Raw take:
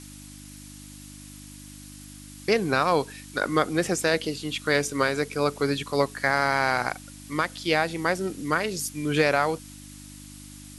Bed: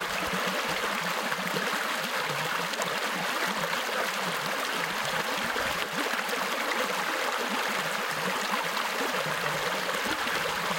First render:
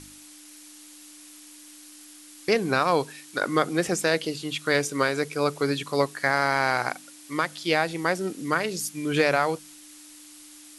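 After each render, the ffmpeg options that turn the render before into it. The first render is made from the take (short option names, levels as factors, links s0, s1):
-af "bandreject=f=50:t=h:w=4,bandreject=f=100:t=h:w=4,bandreject=f=150:t=h:w=4,bandreject=f=200:t=h:w=4,bandreject=f=250:t=h:w=4"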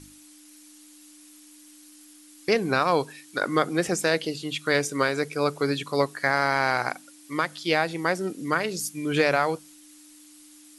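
-af "afftdn=nr=6:nf=-48"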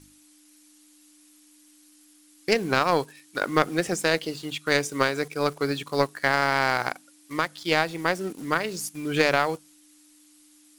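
-filter_complex "[0:a]asplit=2[s0][s1];[s1]acrusher=bits=5:mix=0:aa=0.000001,volume=0.501[s2];[s0][s2]amix=inputs=2:normalize=0,aeval=exprs='0.668*(cos(1*acos(clip(val(0)/0.668,-1,1)))-cos(1*PI/2))+0.106*(cos(3*acos(clip(val(0)/0.668,-1,1)))-cos(3*PI/2))':c=same"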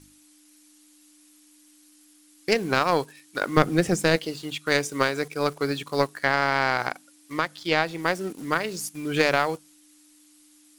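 -filter_complex "[0:a]asettb=1/sr,asplit=3[s0][s1][s2];[s0]atrim=end=3.574[s3];[s1]atrim=start=3.57:end=4.16,asetpts=PTS-STARTPTS,afade=t=in:d=0.004:c=qsin,afade=t=out:st=0.586:d=0.004:c=qsin,lowshelf=f=240:g=12[s4];[s2]atrim=start=4.156[s5];[s3][s4]acrossfade=d=0.004:c1=hsin:c2=qsin[s6];[s6][s5]acrossfade=d=0.004:c1=qsin:c2=hsin,asettb=1/sr,asplit=3[s7][s8][s9];[s7]atrim=end=6.214[s10];[s8]atrim=start=6.21:end=8.03,asetpts=PTS-STARTPTS,afade=t=in:d=0.004:c=qsin,afade=t=out:st=1.816:d=0.004:c=qsin,acrossover=split=6100[s11][s12];[s12]acompressor=threshold=0.00355:ratio=4:attack=1:release=60[s13];[s11][s13]amix=inputs=2:normalize=0[s14];[s9]atrim=start=8.026[s15];[s10][s14]acrossfade=d=0.004:c1=hsin:c2=qsin[s16];[s16][s15]acrossfade=d=0.004:c1=qsin:c2=hsin"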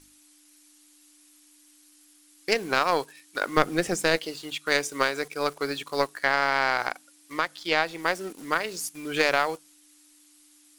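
-af "equalizer=f=120:w=0.52:g=-11"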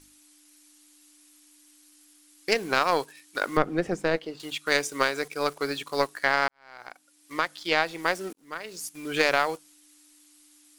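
-filter_complex "[0:a]asettb=1/sr,asplit=3[s0][s1][s2];[s0]atrim=end=3.574[s3];[s1]atrim=start=3.57:end=4.4,asetpts=PTS-STARTPTS,afade=t=in:d=0.004:c=qsin,afade=t=out:st=0.826:d=0.004:c=qsin,lowpass=f=1200:p=1[s4];[s2]atrim=start=4.396[s5];[s3][s4]acrossfade=d=0.004:c1=hsin:c2=qsin[s6];[s6][s5]acrossfade=d=0.004:c1=qsin:c2=hsin,asplit=3[s7][s8][s9];[s7]atrim=end=6.48,asetpts=PTS-STARTPTS,afade=t=out:st=6.476:d=0.004:c=hsin[s10];[s8]atrim=start=6.48:end=8.33,asetpts=PTS-STARTPTS,afade=t=in:d=0.89:c=qua,afade=t=out:st=1.846:d=0.004:c=hsin[s11];[s9]atrim=start=8.33,asetpts=PTS-STARTPTS,afade=t=in:d=0.77[s12];[s10][s11][s12]concat=n=3:v=0:a=1"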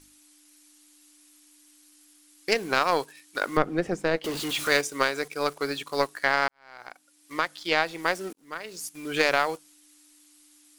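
-filter_complex "[0:a]asettb=1/sr,asplit=3[s0][s1][s2];[s0]atrim=end=4.244[s3];[s1]atrim=start=4.24:end=4.81,asetpts=PTS-STARTPTS,afade=t=in:d=0.004:c=qsin,afade=t=out:st=0.566:d=0.004:c=qsin,aeval=exprs='val(0)+0.5*0.0376*sgn(val(0))':c=same[s4];[s2]atrim=start=4.806[s5];[s3][s4]acrossfade=d=0.004:c1=hsin:c2=qsin[s6];[s6][s5]acrossfade=d=0.004:c1=qsin:c2=hsin"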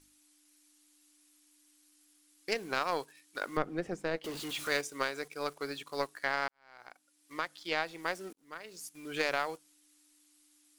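-af "volume=0.355"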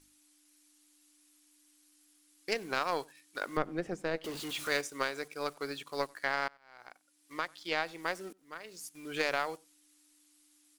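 -filter_complex "[0:a]asplit=2[s0][s1];[s1]adelay=93.29,volume=0.0447,highshelf=f=4000:g=-2.1[s2];[s0][s2]amix=inputs=2:normalize=0"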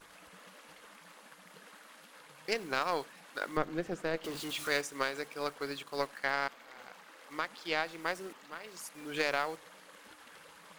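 -filter_complex "[1:a]volume=0.0501[s0];[0:a][s0]amix=inputs=2:normalize=0"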